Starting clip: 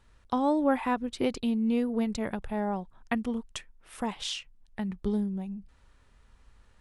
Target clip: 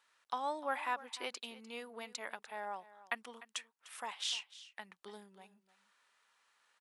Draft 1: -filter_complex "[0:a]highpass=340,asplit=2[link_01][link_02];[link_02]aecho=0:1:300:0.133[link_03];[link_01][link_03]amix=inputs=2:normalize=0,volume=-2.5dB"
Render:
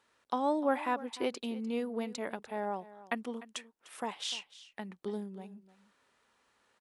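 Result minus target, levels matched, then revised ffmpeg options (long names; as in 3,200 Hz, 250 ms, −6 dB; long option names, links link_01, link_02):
250 Hz band +12.0 dB
-filter_complex "[0:a]highpass=1000,asplit=2[link_01][link_02];[link_02]aecho=0:1:300:0.133[link_03];[link_01][link_03]amix=inputs=2:normalize=0,volume=-2.5dB"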